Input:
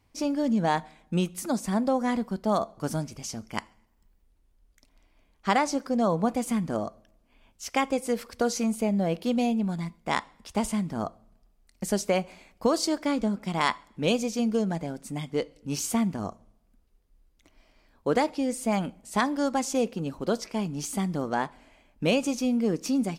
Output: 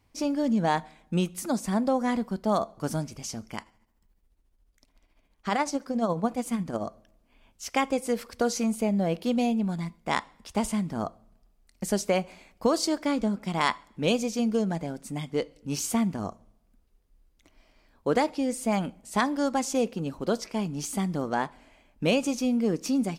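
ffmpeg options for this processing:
-filter_complex "[0:a]asettb=1/sr,asplit=3[a][b][c];[a]atrim=end=3.544[d];[b]atrim=start=3.54:end=6.83,asetpts=PTS-STARTPTS,afade=t=in:d=0.004:c=qsin,afade=t=out:st=3.286:d=0.004:c=qsin,tremolo=f=14:d=0.55[e];[c]atrim=start=6.826[f];[d][e]acrossfade=d=0.004:c1=hsin:c2=qsin[g];[g][f]acrossfade=d=0.004:c1=qsin:c2=hsin"

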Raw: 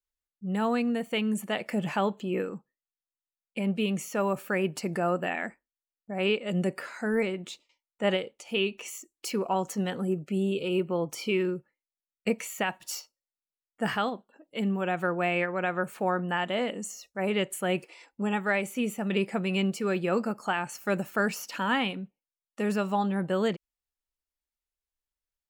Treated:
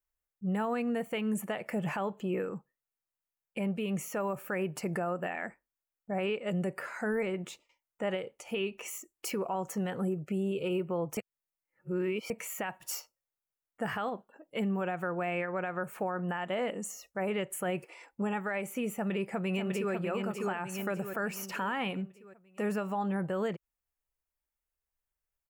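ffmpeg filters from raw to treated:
-filter_complex "[0:a]asplit=2[a][b];[b]afade=t=in:st=18.95:d=0.01,afade=t=out:st=19.93:d=0.01,aecho=0:1:600|1200|1800|2400|3000:0.707946|0.283178|0.113271|0.0453085|0.0181234[c];[a][c]amix=inputs=2:normalize=0,asplit=3[d][e][f];[d]atrim=end=11.172[g];[e]atrim=start=11.168:end=12.302,asetpts=PTS-STARTPTS,areverse[h];[f]atrim=start=12.298[i];[g][h]acrossfade=d=0.004:c1=hsin:c2=hsin[j];[j][i]acrossfade=d=0.004:c1=hsin:c2=hsin,equalizer=f=125:t=o:w=1:g=3,equalizer=f=250:t=o:w=1:g=-6,equalizer=f=4k:t=o:w=1:g=-11,equalizer=f=8k:t=o:w=1:g=-3,alimiter=level_in=4dB:limit=-24dB:level=0:latency=1:release=209,volume=-4dB,volume=3.5dB"

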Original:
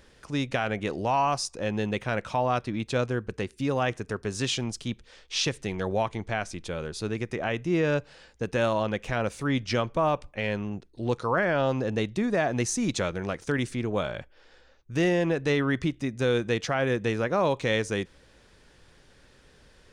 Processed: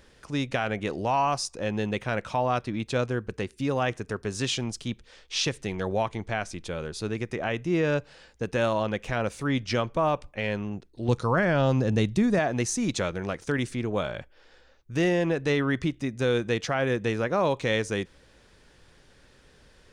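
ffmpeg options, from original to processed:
-filter_complex "[0:a]asettb=1/sr,asplit=3[a][b][c];[a]atrim=end=11.084[d];[b]atrim=start=11.08:end=12.39,asetpts=PTS-STARTPTS,afade=t=in:d=0.004:c=qsin,afade=t=out:st=1.306:d=0.004:c=qsin,bass=f=250:g=8,treble=f=4k:g=5[e];[c]atrim=start=12.386[f];[d][e]acrossfade=d=0.004:c1=hsin:c2=qsin[g];[g][f]acrossfade=d=0.004:c1=qsin:c2=hsin"

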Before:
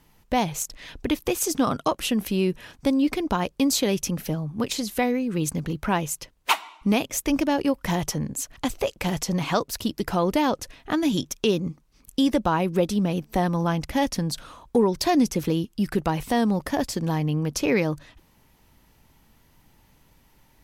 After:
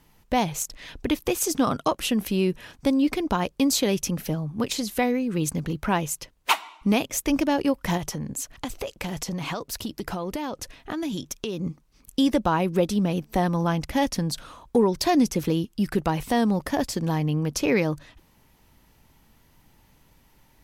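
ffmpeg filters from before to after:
-filter_complex "[0:a]asettb=1/sr,asplit=3[a][b][c];[a]atrim=end=7.974[d];[b]atrim=start=7.97:end=11.6,asetpts=PTS-STARTPTS,afade=t=in:d=0.004:c=qsin,afade=t=out:st=3.626:d=0.004:c=qsin,acompressor=threshold=-26dB:ratio=6:attack=3.2:release=140:knee=1:detection=peak[e];[c]atrim=start=11.596[f];[d][e]acrossfade=d=0.004:c1=hsin:c2=qsin[g];[g][f]acrossfade=d=0.004:c1=qsin:c2=hsin"

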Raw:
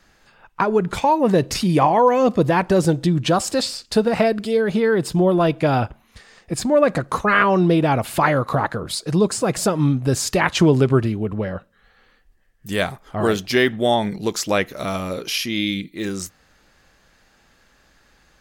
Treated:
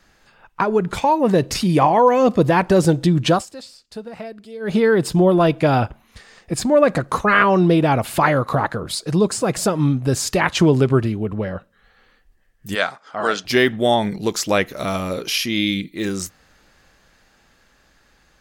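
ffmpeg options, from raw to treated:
-filter_complex "[0:a]asplit=3[a][b][c];[a]afade=t=out:st=12.74:d=0.02[d];[b]highpass=350,equalizer=f=370:t=q:w=4:g=-10,equalizer=f=1.4k:t=q:w=4:g=7,equalizer=f=4.9k:t=q:w=4:g=6,lowpass=f=7.7k:w=0.5412,lowpass=f=7.7k:w=1.3066,afade=t=in:st=12.74:d=0.02,afade=t=out:st=13.44:d=0.02[e];[c]afade=t=in:st=13.44:d=0.02[f];[d][e][f]amix=inputs=3:normalize=0,asplit=3[g][h][i];[g]atrim=end=3.46,asetpts=PTS-STARTPTS,afade=t=out:st=3.32:d=0.14:silence=0.125893[j];[h]atrim=start=3.46:end=4.6,asetpts=PTS-STARTPTS,volume=-18dB[k];[i]atrim=start=4.6,asetpts=PTS-STARTPTS,afade=t=in:d=0.14:silence=0.125893[l];[j][k][l]concat=n=3:v=0:a=1,dynaudnorm=f=310:g=13:m=4.5dB"

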